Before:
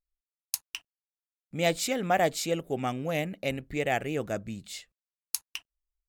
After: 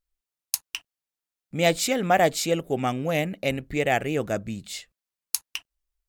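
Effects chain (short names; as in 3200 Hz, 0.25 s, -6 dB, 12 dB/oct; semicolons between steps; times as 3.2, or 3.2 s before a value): gain +5 dB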